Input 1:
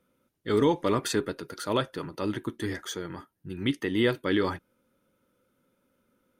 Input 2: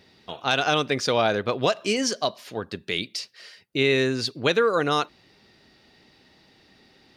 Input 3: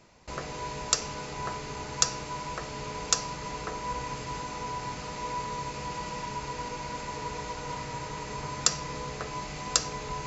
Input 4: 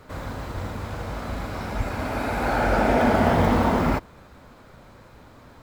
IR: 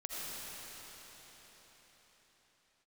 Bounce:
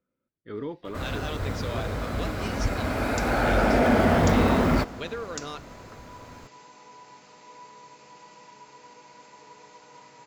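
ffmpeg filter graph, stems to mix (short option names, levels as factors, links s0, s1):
-filter_complex "[0:a]lowpass=2300,volume=0.282[s0];[1:a]adelay=550,volume=0.2[s1];[2:a]highpass=230,equalizer=f=880:w=5.8:g=9,adelay=2250,volume=0.224[s2];[3:a]asoftclip=type=tanh:threshold=0.266,adelay=850,volume=1.06,asplit=2[s3][s4];[s4]volume=0.1[s5];[4:a]atrim=start_sample=2205[s6];[s5][s6]afir=irnorm=-1:irlink=0[s7];[s0][s1][s2][s3][s7]amix=inputs=5:normalize=0,equalizer=f=890:w=3.7:g=-5.5"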